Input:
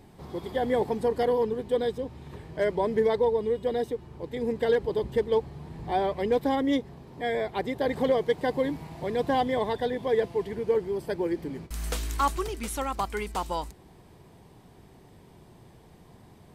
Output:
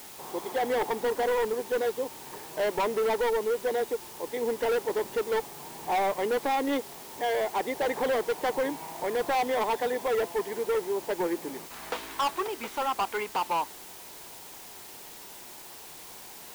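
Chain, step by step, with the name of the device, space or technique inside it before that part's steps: drive-through speaker (BPF 390–3000 Hz; bell 900 Hz +6.5 dB 0.51 oct; hard clip -26.5 dBFS, distortion -7 dB; white noise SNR 16 dB); gain +3 dB

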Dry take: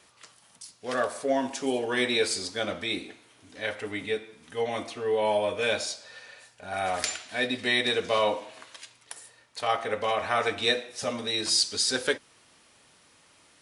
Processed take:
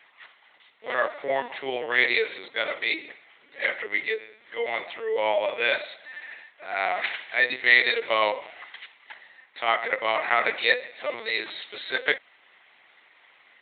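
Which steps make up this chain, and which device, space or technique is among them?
talking toy (LPC vocoder at 8 kHz pitch kept; HPF 480 Hz 12 dB/oct; bell 2000 Hz +11 dB 0.35 oct); gain +2.5 dB

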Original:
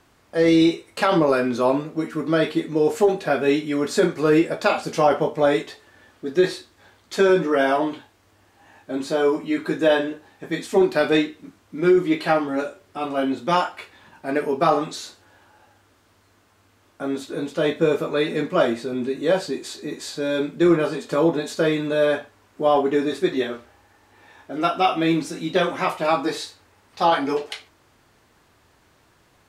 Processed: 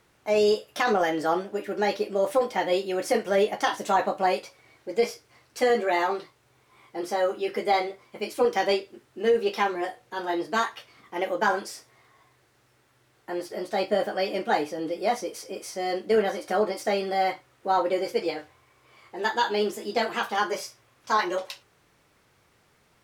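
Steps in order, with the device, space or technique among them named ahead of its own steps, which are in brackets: nightcore (varispeed +28%); gain -5 dB

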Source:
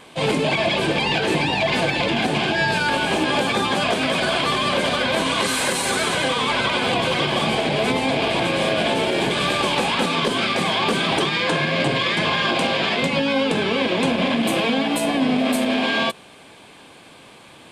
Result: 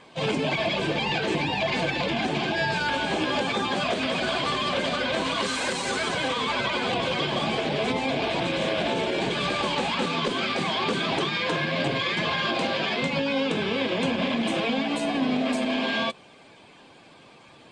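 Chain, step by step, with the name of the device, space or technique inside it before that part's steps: clip after many re-uploads (LPF 7600 Hz 24 dB/oct; bin magnitudes rounded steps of 15 dB); gain -5 dB

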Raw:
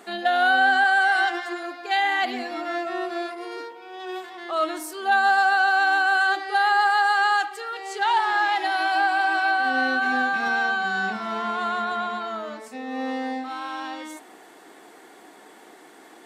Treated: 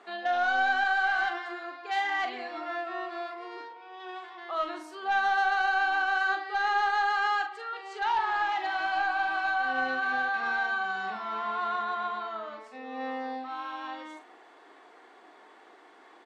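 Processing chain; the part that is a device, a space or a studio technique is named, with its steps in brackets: intercom (BPF 350–4000 Hz; bell 1100 Hz +4.5 dB 0.42 oct; soft clip -14 dBFS, distortion -18 dB; doubler 42 ms -8 dB); gain -6.5 dB

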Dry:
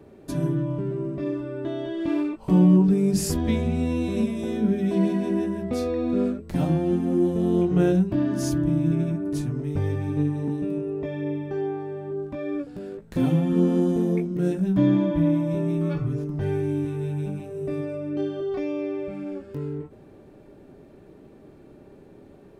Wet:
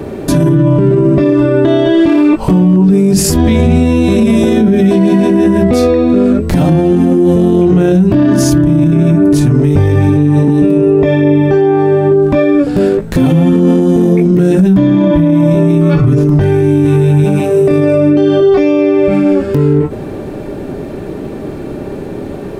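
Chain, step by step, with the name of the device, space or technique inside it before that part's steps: 17.24–17.71 HPF 230 Hz 6 dB/oct; loud club master (compressor 2.5:1, threshold -25 dBFS, peak gain reduction 8.5 dB; hard clip -17 dBFS, distortion -44 dB; maximiser +27.5 dB); gain -1 dB

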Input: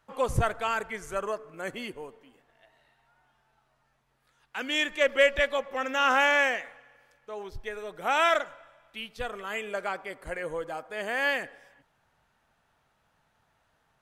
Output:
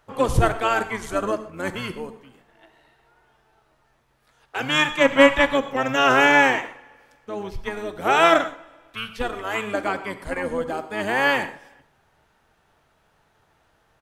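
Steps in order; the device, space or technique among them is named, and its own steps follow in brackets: octave pedal (harmoniser -12 st -5 dB); non-linear reverb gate 0.15 s flat, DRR 11 dB; gain +6 dB

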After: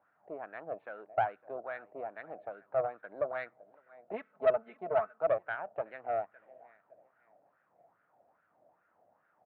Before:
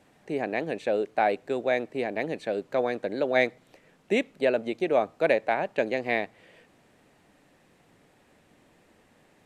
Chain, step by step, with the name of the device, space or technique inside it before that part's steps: dynamic EQ 600 Hz, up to -4 dB, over -32 dBFS, Q 0.85; 4.13–5.18 comb 4.6 ms, depth 94%; tilt -4 dB/oct; feedback echo 0.559 s, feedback 34%, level -20.5 dB; wah-wah guitar rig (wah 2.4 Hz 640–1500 Hz, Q 4.6; tube stage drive 24 dB, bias 0.5; speaker cabinet 91–3700 Hz, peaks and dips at 96 Hz +4 dB, 250 Hz -5 dB, 390 Hz -4 dB, 660 Hz +6 dB, 1400 Hz +7 dB)

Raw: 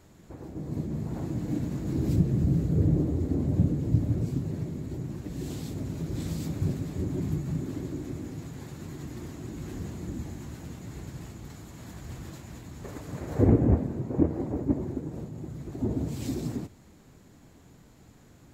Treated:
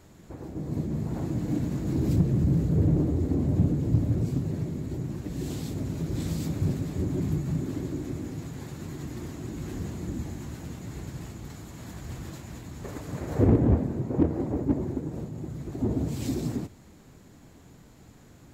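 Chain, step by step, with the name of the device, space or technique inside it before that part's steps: parallel distortion (in parallel at -5 dB: hard clip -24.5 dBFS, distortion -8 dB); on the sum: gain -1.5 dB

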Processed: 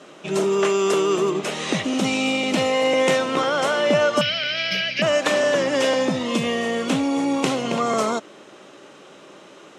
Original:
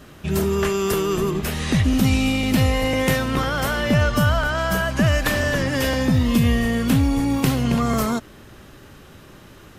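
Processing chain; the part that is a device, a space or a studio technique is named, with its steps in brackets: 4.21–5.02 EQ curve 150 Hz 0 dB, 310 Hz -13 dB, 610 Hz -11 dB, 970 Hz -28 dB, 2300 Hz +15 dB, 3400 Hz +5 dB, 5100 Hz +11 dB, 7700 Hz -27 dB, 13000 Hz 0 dB; television speaker (speaker cabinet 220–8000 Hz, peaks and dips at 240 Hz -8 dB, 580 Hz +4 dB, 1700 Hz -6 dB, 4700 Hz -5 dB); gain +3 dB

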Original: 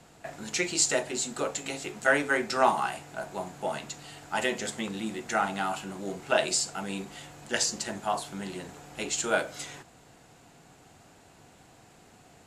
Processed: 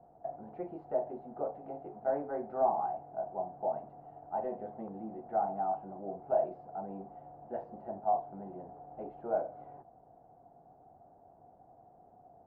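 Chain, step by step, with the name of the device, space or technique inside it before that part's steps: overdriven synthesiser ladder filter (soft clip -20 dBFS, distortion -13 dB; ladder low-pass 790 Hz, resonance 70%); gain +2 dB

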